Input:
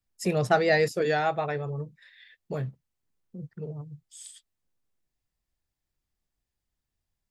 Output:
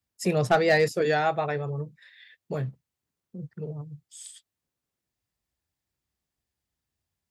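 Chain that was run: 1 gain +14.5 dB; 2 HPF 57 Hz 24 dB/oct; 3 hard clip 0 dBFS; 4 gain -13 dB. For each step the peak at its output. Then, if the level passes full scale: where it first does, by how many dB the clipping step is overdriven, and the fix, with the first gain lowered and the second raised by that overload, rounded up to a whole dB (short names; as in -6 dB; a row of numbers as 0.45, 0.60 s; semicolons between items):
+5.0, +5.0, 0.0, -13.0 dBFS; step 1, 5.0 dB; step 1 +9.5 dB, step 4 -8 dB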